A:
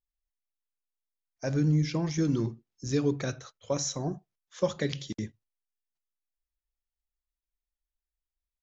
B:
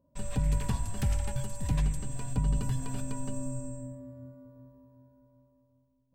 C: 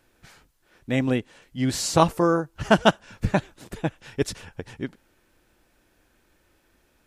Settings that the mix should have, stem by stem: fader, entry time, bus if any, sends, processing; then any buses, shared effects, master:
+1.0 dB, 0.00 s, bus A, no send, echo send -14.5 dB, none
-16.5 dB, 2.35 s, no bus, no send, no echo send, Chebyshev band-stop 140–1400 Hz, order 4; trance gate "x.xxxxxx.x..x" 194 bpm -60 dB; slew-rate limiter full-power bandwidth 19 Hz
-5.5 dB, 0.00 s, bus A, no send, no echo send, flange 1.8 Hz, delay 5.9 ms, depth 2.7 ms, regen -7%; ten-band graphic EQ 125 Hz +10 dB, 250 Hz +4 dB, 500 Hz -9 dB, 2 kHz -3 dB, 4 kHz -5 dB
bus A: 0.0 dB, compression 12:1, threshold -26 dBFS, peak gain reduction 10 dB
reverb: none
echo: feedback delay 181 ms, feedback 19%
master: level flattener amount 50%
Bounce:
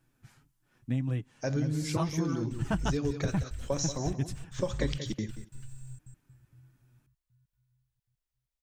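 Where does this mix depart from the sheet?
stem B -16.5 dB -> -7.0 dB; master: missing level flattener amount 50%

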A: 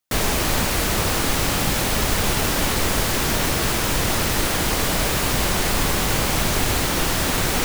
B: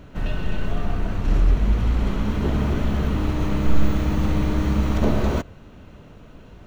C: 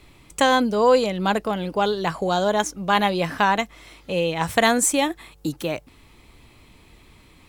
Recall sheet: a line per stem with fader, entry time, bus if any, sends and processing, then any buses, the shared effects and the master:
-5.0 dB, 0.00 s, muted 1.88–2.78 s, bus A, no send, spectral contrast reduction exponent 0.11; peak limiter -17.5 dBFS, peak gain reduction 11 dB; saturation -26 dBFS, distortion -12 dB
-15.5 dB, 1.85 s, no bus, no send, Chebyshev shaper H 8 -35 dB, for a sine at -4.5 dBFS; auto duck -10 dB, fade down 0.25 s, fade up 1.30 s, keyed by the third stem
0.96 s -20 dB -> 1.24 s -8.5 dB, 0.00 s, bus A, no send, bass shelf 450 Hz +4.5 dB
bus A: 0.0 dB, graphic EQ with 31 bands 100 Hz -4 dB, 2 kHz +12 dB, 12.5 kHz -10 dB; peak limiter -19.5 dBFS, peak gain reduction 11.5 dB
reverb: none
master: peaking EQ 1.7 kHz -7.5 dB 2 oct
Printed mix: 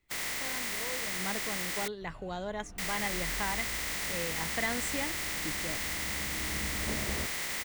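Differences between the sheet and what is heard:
stem C -20.0 dB -> -30.0 dB; master: missing peaking EQ 1.7 kHz -7.5 dB 2 oct

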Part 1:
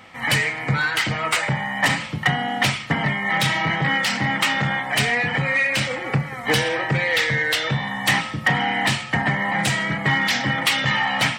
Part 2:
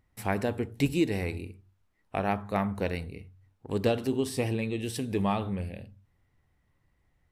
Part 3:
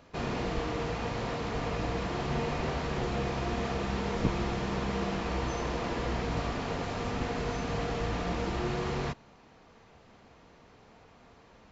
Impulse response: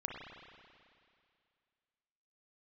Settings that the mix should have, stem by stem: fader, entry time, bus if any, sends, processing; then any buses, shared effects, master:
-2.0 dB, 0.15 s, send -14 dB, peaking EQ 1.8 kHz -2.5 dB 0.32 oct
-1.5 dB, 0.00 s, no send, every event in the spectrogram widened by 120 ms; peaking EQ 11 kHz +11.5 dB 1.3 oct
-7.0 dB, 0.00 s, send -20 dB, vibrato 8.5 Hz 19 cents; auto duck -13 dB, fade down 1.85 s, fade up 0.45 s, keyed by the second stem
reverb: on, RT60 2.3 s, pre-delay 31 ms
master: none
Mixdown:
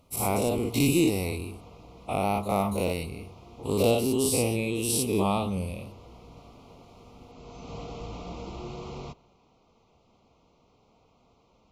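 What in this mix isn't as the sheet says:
stem 1: muted; master: extra Butterworth band-stop 1.7 kHz, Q 1.6

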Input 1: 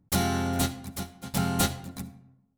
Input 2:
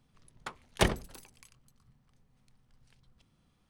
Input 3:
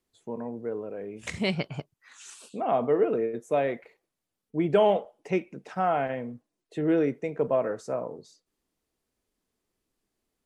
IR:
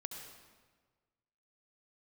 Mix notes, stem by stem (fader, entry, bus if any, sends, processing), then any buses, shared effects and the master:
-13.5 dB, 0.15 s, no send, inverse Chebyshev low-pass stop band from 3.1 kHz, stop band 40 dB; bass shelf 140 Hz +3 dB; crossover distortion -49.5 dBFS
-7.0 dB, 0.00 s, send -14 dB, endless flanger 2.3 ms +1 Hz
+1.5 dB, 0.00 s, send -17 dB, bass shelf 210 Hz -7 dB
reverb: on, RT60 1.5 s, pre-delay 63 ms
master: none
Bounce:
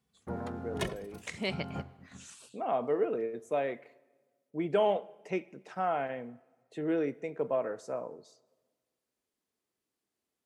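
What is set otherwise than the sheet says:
stem 3 +1.5 dB -> -5.5 dB; master: extra high-pass 72 Hz

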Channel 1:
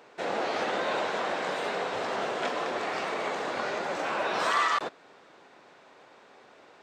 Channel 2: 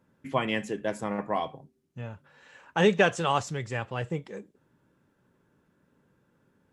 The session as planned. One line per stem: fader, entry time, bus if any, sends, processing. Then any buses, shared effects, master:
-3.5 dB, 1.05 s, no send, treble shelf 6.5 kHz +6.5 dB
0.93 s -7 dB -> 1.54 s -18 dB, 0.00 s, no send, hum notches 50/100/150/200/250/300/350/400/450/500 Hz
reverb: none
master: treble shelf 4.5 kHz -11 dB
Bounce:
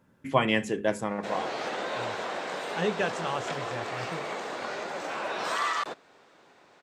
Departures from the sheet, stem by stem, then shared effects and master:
stem 2 -7.0 dB -> +4.0 dB; master: missing treble shelf 4.5 kHz -11 dB

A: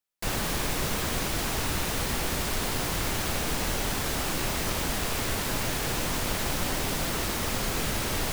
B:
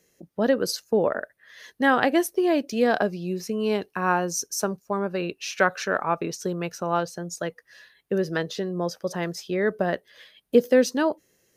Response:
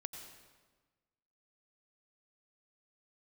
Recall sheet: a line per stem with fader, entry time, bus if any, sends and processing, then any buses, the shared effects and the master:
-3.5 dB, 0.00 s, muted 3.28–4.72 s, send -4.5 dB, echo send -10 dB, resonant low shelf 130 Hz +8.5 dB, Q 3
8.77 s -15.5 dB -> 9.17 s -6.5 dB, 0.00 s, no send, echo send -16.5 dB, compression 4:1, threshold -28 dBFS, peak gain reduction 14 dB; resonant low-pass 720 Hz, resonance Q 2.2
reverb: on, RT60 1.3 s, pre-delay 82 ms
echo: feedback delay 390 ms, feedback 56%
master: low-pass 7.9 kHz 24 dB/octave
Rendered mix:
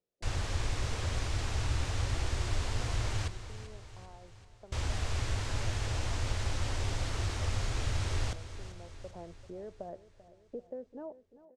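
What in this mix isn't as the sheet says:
stem A -3.5 dB -> -12.0 dB; stem B -15.5 dB -> -25.5 dB

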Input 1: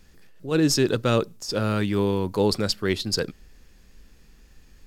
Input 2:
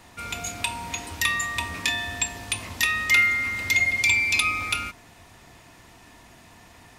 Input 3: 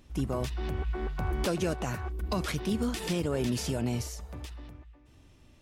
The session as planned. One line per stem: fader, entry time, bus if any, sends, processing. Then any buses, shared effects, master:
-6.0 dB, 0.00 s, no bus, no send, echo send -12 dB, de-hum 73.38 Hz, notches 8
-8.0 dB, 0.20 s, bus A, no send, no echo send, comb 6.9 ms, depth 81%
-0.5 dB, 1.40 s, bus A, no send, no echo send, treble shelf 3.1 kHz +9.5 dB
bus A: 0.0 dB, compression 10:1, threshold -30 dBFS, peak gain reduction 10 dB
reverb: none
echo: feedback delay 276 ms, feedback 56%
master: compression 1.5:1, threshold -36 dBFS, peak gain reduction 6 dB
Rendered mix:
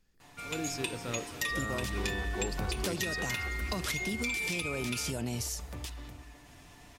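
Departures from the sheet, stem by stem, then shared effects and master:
stem 1 -6.0 dB -> -17.0 dB; master: missing compression 1.5:1, threshold -36 dBFS, peak gain reduction 6 dB

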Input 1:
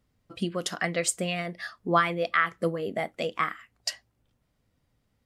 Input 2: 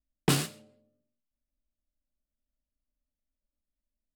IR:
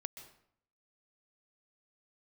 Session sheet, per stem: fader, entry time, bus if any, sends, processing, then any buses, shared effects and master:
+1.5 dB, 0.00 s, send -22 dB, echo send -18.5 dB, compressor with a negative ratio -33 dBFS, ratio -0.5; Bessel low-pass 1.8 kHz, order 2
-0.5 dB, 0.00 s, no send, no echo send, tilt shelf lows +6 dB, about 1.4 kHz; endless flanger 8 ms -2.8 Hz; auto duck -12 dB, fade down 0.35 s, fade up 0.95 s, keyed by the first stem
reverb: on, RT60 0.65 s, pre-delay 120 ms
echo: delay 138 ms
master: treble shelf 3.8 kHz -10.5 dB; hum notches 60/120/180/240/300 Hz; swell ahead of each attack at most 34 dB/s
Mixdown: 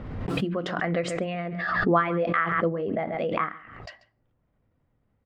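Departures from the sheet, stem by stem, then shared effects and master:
stem 1: missing compressor with a negative ratio -33 dBFS, ratio -0.5; stem 2 -0.5 dB -> -8.0 dB

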